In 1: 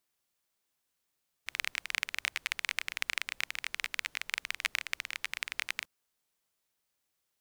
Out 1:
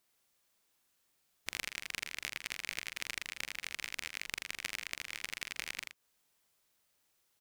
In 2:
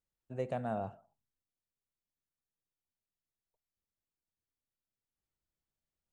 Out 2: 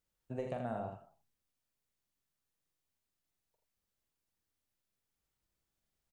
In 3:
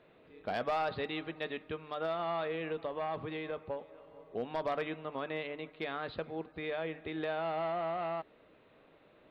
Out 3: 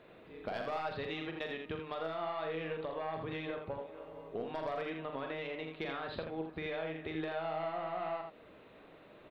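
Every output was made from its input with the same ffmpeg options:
-filter_complex "[0:a]acompressor=threshold=0.00794:ratio=4,aeval=exprs='0.126*(cos(1*acos(clip(val(0)/0.126,-1,1)))-cos(1*PI/2))+0.0355*(cos(2*acos(clip(val(0)/0.126,-1,1)))-cos(2*PI/2))':c=same,asplit=2[s0][s1];[s1]aecho=0:1:43.73|81.63:0.447|0.501[s2];[s0][s2]amix=inputs=2:normalize=0,volume=1.58"

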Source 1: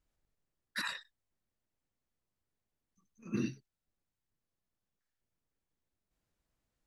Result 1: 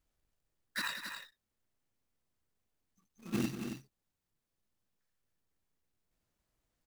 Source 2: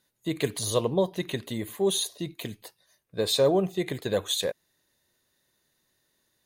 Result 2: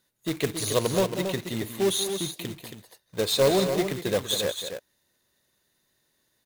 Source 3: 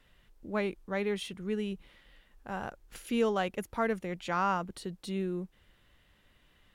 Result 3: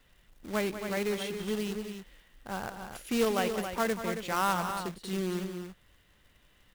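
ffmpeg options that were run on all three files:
-af "acrusher=bits=2:mode=log:mix=0:aa=0.000001,aecho=1:1:189.5|274.1:0.282|0.398"

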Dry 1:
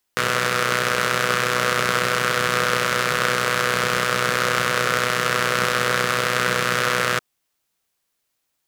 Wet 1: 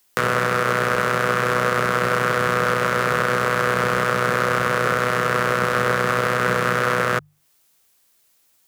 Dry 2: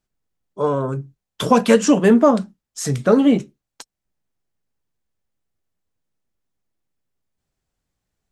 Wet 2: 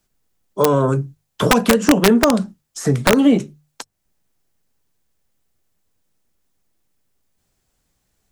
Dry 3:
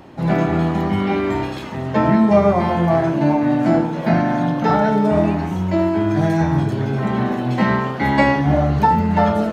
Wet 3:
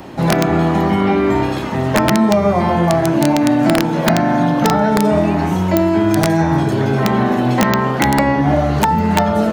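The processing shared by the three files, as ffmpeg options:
-filter_complex "[0:a]highshelf=f=5500:g=6.5,bandreject=f=50:t=h:w=6,bandreject=f=100:t=h:w=6,bandreject=f=150:t=h:w=6,alimiter=limit=0.596:level=0:latency=1:release=212,acrossover=split=270|1800[s0][s1][s2];[s0]acompressor=threshold=0.0501:ratio=4[s3];[s1]acompressor=threshold=0.0708:ratio=4[s4];[s2]acompressor=threshold=0.00794:ratio=4[s5];[s3][s4][s5]amix=inputs=3:normalize=0,aeval=exprs='(mod(4.22*val(0)+1,2)-1)/4.22':c=same,volume=2.66"

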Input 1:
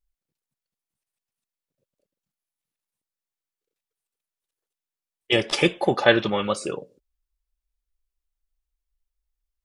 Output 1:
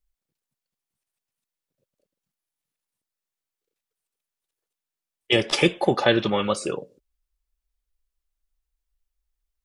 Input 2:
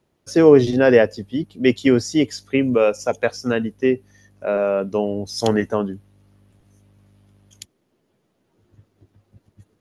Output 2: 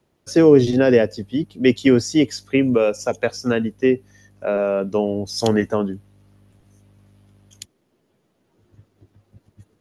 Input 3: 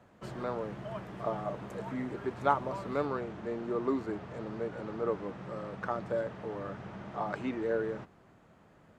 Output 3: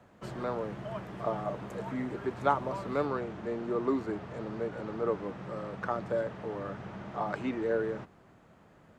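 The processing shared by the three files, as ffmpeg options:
-filter_complex "[0:a]acrossover=split=460|3000[s0][s1][s2];[s1]acompressor=threshold=0.0794:ratio=6[s3];[s0][s3][s2]amix=inputs=3:normalize=0,volume=1.19"

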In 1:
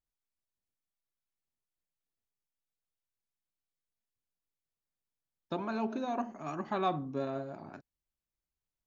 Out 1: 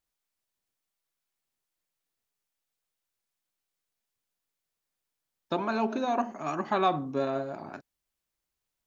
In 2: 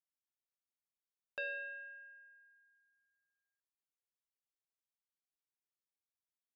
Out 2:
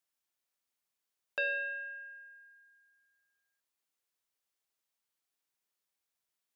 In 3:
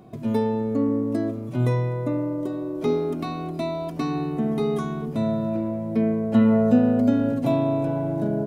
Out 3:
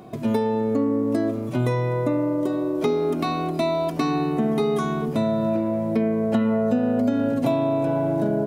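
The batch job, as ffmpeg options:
-af "lowshelf=f=230:g=-8,acompressor=threshold=0.0501:ratio=6,volume=2.51"

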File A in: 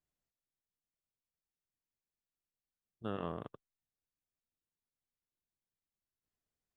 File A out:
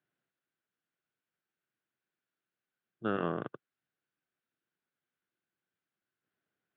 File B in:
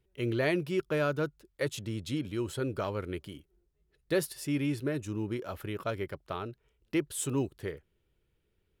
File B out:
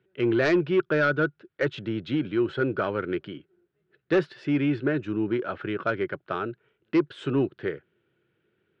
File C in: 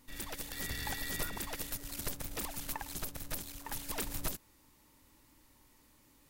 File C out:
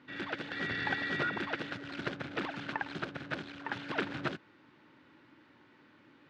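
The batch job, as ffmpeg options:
-af "highpass=f=120:w=0.5412,highpass=f=120:w=1.3066,equalizer=f=350:t=q:w=4:g=5,equalizer=f=970:t=q:w=4:g=-3,equalizer=f=1500:t=q:w=4:g=10,lowpass=f=3400:w=0.5412,lowpass=f=3400:w=1.3066,aeval=exprs='0.251*sin(PI/2*1.78*val(0)/0.251)':c=same,volume=0.708"

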